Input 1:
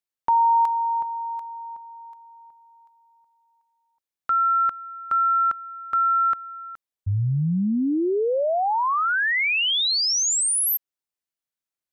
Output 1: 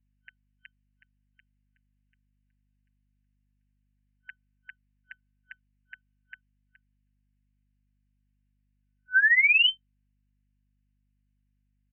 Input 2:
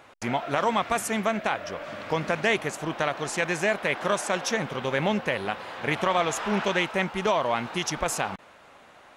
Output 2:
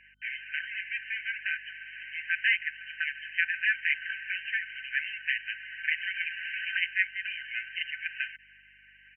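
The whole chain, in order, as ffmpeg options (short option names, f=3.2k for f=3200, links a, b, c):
-af "aecho=1:1:5.8:0.75,afftfilt=real='re*between(b*sr/4096,1500,3100)':imag='im*between(b*sr/4096,1500,3100)':win_size=4096:overlap=0.75,aeval=exprs='val(0)+0.000251*(sin(2*PI*50*n/s)+sin(2*PI*2*50*n/s)/2+sin(2*PI*3*50*n/s)/3+sin(2*PI*4*50*n/s)/4+sin(2*PI*5*50*n/s)/5)':c=same"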